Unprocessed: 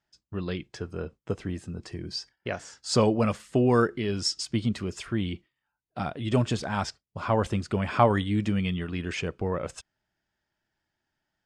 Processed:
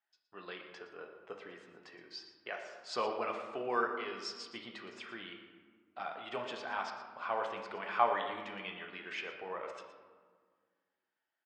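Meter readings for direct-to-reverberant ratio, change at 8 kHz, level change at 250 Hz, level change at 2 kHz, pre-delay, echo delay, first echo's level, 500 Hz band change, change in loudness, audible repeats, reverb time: 2.5 dB, −19.0 dB, −21.5 dB, −4.5 dB, 3 ms, 117 ms, −13.0 dB, −11.0 dB, −10.5 dB, 1, 1.7 s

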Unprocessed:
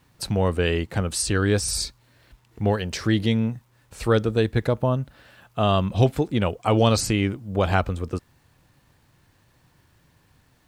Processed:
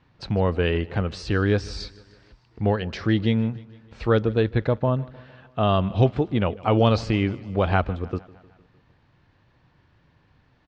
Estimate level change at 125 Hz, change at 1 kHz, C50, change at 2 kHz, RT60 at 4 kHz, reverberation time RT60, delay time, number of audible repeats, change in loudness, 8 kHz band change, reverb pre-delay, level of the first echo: 0.0 dB, 0.0 dB, no reverb audible, −1.0 dB, no reverb audible, no reverb audible, 153 ms, 3, −0.5 dB, below −15 dB, no reverb audible, −21.5 dB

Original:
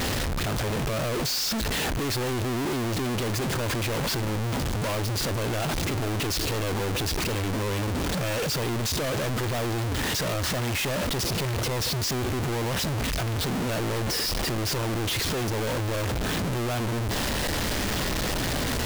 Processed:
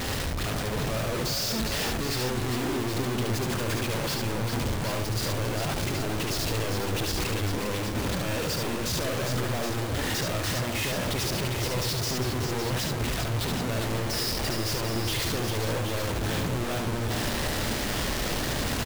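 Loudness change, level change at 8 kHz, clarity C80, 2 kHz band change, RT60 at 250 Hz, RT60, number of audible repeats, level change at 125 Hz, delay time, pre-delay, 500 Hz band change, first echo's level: −1.5 dB, −1.5 dB, no reverb audible, −1.5 dB, no reverb audible, no reverb audible, 3, −1.5 dB, 72 ms, no reverb audible, −1.5 dB, −3.5 dB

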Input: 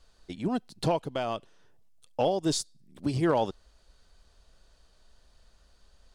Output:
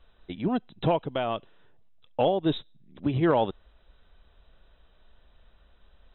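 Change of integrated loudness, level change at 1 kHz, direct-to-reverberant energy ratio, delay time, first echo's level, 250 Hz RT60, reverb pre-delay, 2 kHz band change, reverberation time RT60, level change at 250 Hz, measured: +2.5 dB, +2.5 dB, no reverb audible, no echo audible, no echo audible, no reverb audible, no reverb audible, +2.5 dB, no reverb audible, +2.5 dB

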